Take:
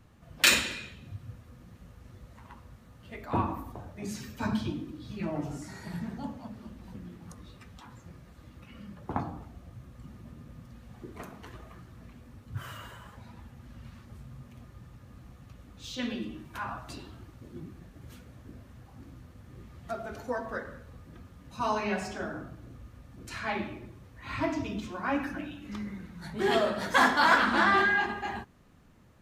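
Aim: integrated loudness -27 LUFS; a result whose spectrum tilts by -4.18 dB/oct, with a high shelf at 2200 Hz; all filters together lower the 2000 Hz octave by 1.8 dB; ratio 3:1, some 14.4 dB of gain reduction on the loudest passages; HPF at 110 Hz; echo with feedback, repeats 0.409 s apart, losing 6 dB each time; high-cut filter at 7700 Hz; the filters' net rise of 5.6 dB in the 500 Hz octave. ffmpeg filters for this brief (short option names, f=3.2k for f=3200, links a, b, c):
-af "highpass=110,lowpass=7.7k,equalizer=f=500:t=o:g=7.5,equalizer=f=2k:t=o:g=-7.5,highshelf=f=2.2k:g=8.5,acompressor=threshold=-35dB:ratio=3,aecho=1:1:409|818|1227|1636|2045|2454:0.501|0.251|0.125|0.0626|0.0313|0.0157,volume=12dB"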